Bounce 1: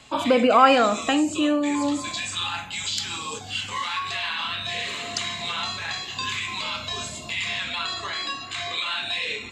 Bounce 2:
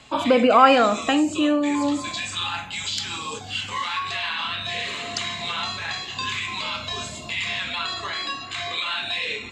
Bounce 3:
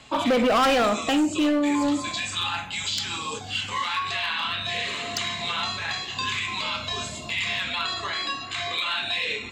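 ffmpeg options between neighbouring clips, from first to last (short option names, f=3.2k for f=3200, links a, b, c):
-af "highshelf=f=8.4k:g=-8,volume=1.5dB"
-af "asoftclip=type=hard:threshold=-17.5dB"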